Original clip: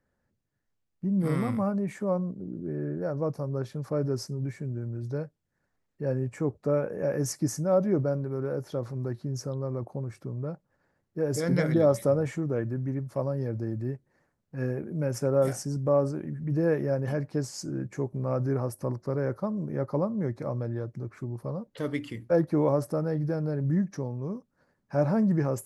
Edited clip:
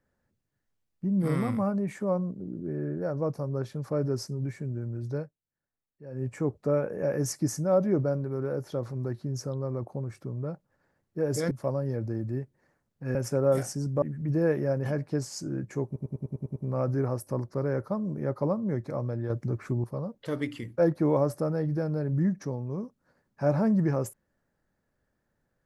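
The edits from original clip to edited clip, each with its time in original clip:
5.18–6.26 dip -14.5 dB, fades 0.15 s
11.51–13.03 cut
14.67–15.05 cut
15.92–16.24 cut
18.08 stutter 0.10 s, 8 plays
20.82–21.36 gain +6 dB

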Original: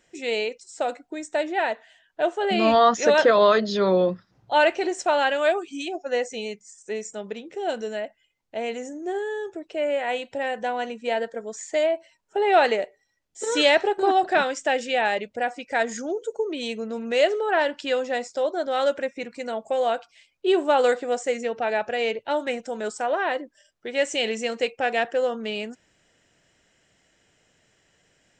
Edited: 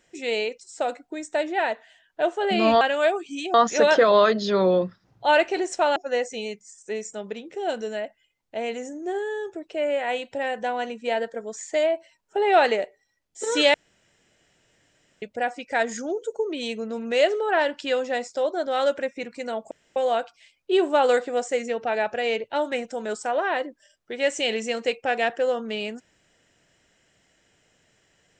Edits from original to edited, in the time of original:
5.23–5.96 move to 2.81
13.74–15.22 room tone
19.71 insert room tone 0.25 s

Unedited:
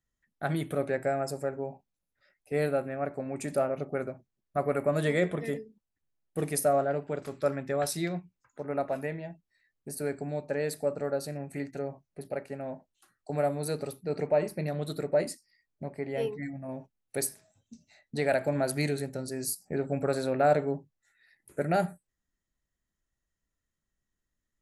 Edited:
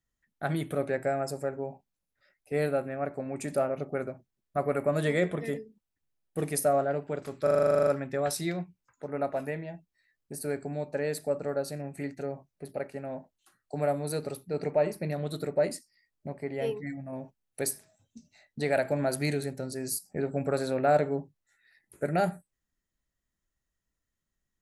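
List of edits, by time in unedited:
7.43 stutter 0.04 s, 12 plays

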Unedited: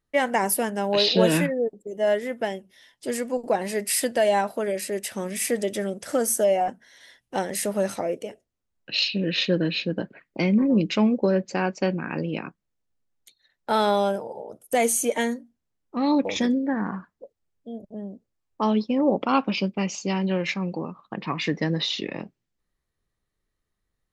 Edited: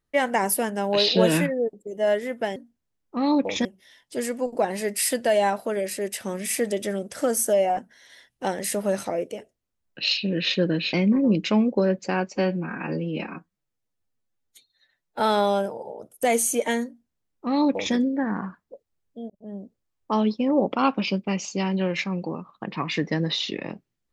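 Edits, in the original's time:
9.84–10.39 cut
11.78–13.7 stretch 1.5×
15.36–16.45 copy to 2.56
17.8–18.06 fade in

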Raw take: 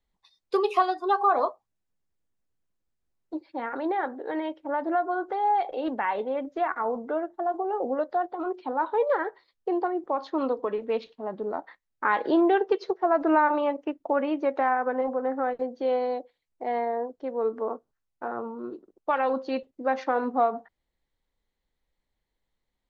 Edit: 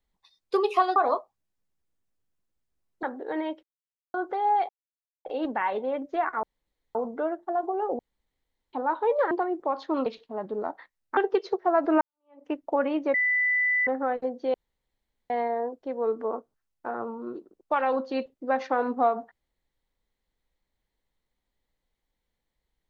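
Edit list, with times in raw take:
0.96–1.27 cut
3.34–4.02 cut
4.62–5.13 mute
5.68 insert silence 0.56 s
6.86 insert room tone 0.52 s
7.9–8.64 room tone
9.22–9.75 cut
10.5–10.95 cut
12.06–12.54 cut
13.38–13.83 fade in exponential
14.51–15.24 bleep 1990 Hz -21 dBFS
15.91–16.67 room tone

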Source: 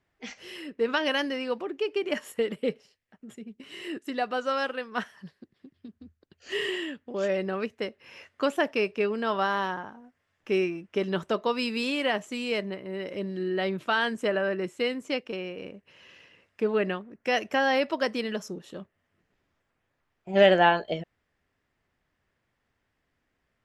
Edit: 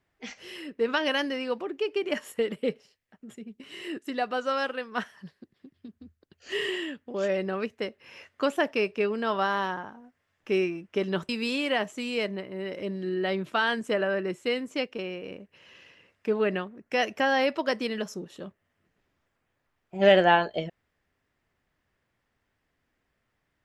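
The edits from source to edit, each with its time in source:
11.29–11.63 cut

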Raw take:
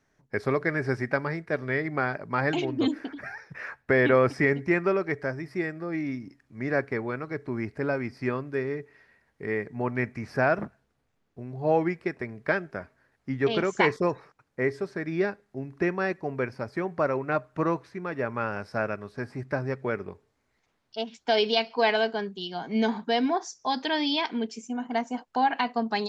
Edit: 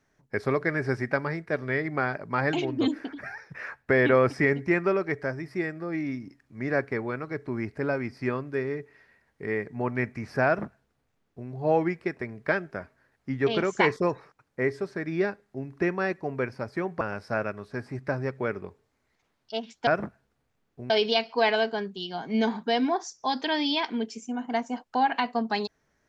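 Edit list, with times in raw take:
10.46–11.49 copy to 21.31
17.01–18.45 cut

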